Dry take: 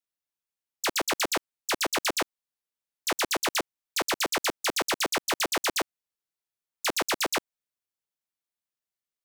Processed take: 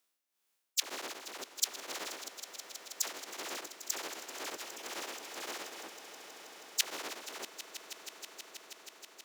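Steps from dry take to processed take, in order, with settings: every event in the spectrogram widened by 120 ms; high-pass 230 Hz 12 dB/octave; peak limiter -12 dBFS, peak gain reduction 11 dB; tremolo 2 Hz, depth 66%; inverted gate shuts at -23 dBFS, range -26 dB; echo with a slow build-up 160 ms, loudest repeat 5, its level -16 dB; trim +8.5 dB

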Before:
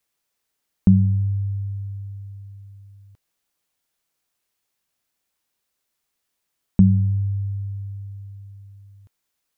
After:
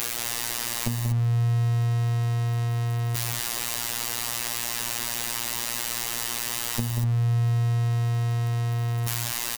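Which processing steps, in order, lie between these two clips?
jump at every zero crossing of -20.5 dBFS; reverb removal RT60 0.69 s; compression 4:1, threshold -24 dBFS, peak gain reduction 13.5 dB; robot voice 118 Hz; on a send: loudspeakers at several distances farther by 64 m -8 dB, 84 m -8 dB

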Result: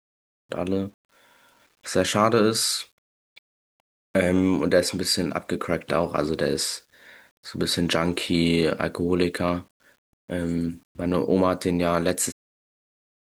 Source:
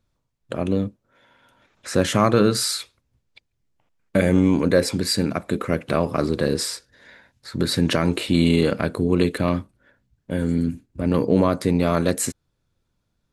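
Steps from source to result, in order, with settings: bass shelf 210 Hz -9 dB; word length cut 10-bit, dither none

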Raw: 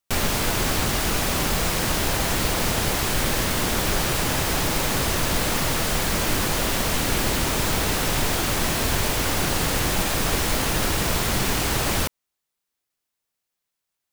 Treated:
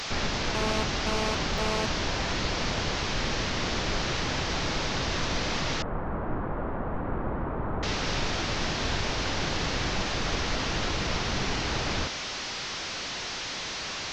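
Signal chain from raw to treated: one-bit delta coder 32 kbps, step -21.5 dBFS; 0.55–1.86 s: mobile phone buzz -25 dBFS; 5.82–7.83 s: low-pass 1.3 kHz 24 dB/octave; trim -6 dB

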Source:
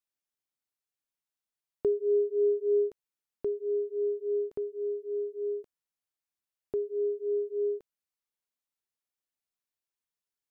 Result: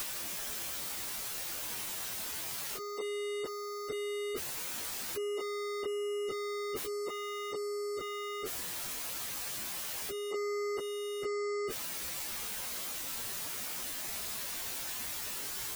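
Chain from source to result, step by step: one-bit comparator; plain phase-vocoder stretch 1.5×; spectral gate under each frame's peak -30 dB strong

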